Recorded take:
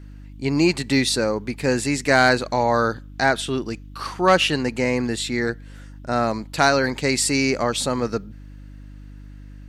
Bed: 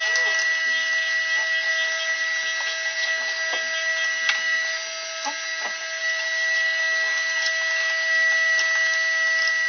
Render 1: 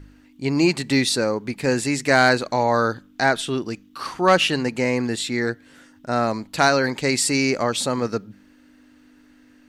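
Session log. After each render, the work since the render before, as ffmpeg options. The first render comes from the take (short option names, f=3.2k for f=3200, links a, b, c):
-af "bandreject=f=50:t=h:w=4,bandreject=f=100:t=h:w=4,bandreject=f=150:t=h:w=4,bandreject=f=200:t=h:w=4"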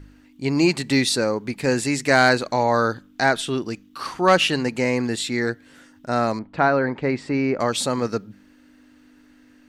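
-filter_complex "[0:a]asettb=1/sr,asplit=3[a][b][c];[a]atrim=end=6.394[d];[b]atrim=start=6.39:end=7.6,asetpts=PTS-STARTPTS,afade=t=in:d=0.004:c=qsin,afade=t=out:st=1.206:d=0.004:c=qsin,lowpass=1.6k[e];[c]atrim=start=7.596[f];[d][e]acrossfade=d=0.004:c1=hsin:c2=qsin[g];[g][f]acrossfade=d=0.004:c1=qsin:c2=hsin"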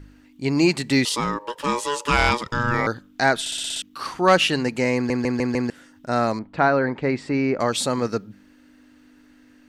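-filter_complex "[0:a]asettb=1/sr,asplit=3[a][b][c];[a]atrim=end=1.054[d];[b]atrim=start=1.05:end=2.87,asetpts=PTS-STARTPTS,afade=t=in:d=0.004:c=qsin,afade=t=out:st=1.816:d=0.004:c=qsin,aeval=exprs='val(0)*sin(2*PI*720*n/s)':c=same[e];[c]atrim=start=2.866[f];[d][e]acrossfade=d=0.004:c1=hsin:c2=qsin[g];[g][f]acrossfade=d=0.004:c1=qsin:c2=hsin,asplit=13[h][i][j][k][l][m][n][o][p][q][r][s][t];[h]atrim=end=3.462[u];[i]atrim=start=3.398:end=3.462[v];[j]atrim=start=3.398:end=3.462[w];[k]atrim=start=3.398:end=3.462[x];[l]atrim=start=3.398:end=3.462[y];[m]atrim=start=3.398:end=3.462[z];[n]atrim=start=3.398:end=3.462[aa];[o]atrim=start=3.818:end=5.102[ab];[p]atrim=start=4.948:end=5.102[ac];[q]atrim=start=4.948:end=5.102[ad];[r]atrim=start=4.948:end=5.102[ae];[s]atrim=start=4.948:end=5.102[af];[t]atrim=start=5.698[ag];[u][v]acrossfade=d=0.004:c1=hsin:c2=hsin[ah];[ah][w]acrossfade=d=0.004:c1=hsin:c2=hsin[ai];[ai][x]acrossfade=d=0.004:c1=hsin:c2=hsin[aj];[aj][y]acrossfade=d=0.004:c1=hsin:c2=hsin[ak];[ak][z]acrossfade=d=0.004:c1=hsin:c2=hsin[al];[al][aa]acrossfade=d=0.004:c1=hsin:c2=hsin[am];[am][ab]acrossfade=d=0.004:c1=hsin:c2=hsin[an];[an][ac]acrossfade=d=0.004:c1=hsin:c2=hsin[ao];[ao][ad]acrossfade=d=0.004:c1=hsin:c2=hsin[ap];[ap][ae]acrossfade=d=0.004:c1=hsin:c2=hsin[aq];[aq][af]acrossfade=d=0.004:c1=hsin:c2=hsin[ar];[ar][ag]acrossfade=d=0.004:c1=hsin:c2=hsin"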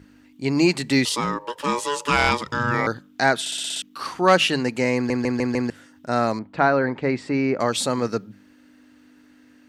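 -af "highpass=73,bandreject=f=50:t=h:w=6,bandreject=f=100:t=h:w=6,bandreject=f=150:t=h:w=6"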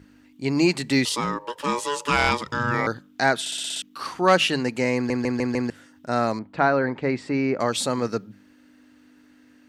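-af "volume=-1.5dB"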